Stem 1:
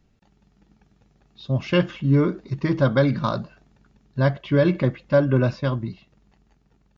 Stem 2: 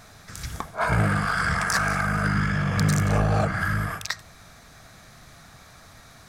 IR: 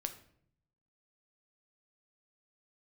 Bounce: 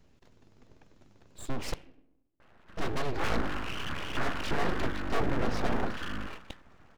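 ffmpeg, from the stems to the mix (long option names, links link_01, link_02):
-filter_complex "[0:a]acompressor=threshold=-22dB:ratio=4,asoftclip=type=tanh:threshold=-24.5dB,volume=-1dB,asplit=3[link_01][link_02][link_03];[link_01]atrim=end=1.74,asetpts=PTS-STARTPTS,afade=type=out:start_time=1.736:duration=0.004:curve=hsin[link_04];[link_02]atrim=start=1.74:end=2.77,asetpts=PTS-STARTPTS,volume=0[link_05];[link_03]atrim=start=2.77,asetpts=PTS-STARTPTS,afade=type=in:duration=0.004:curve=hsin[link_06];[link_04][link_05][link_06]concat=n=3:v=0:a=1,asplit=2[link_07][link_08];[link_08]volume=-6dB[link_09];[1:a]lowpass=frequency=1700:width=0.5412,lowpass=frequency=1700:width=1.3066,adelay=2400,volume=-9.5dB,asplit=2[link_10][link_11];[link_11]volume=-12dB[link_12];[2:a]atrim=start_sample=2205[link_13];[link_09][link_12]amix=inputs=2:normalize=0[link_14];[link_14][link_13]afir=irnorm=-1:irlink=0[link_15];[link_07][link_10][link_15]amix=inputs=3:normalize=0,aeval=exprs='abs(val(0))':channel_layout=same"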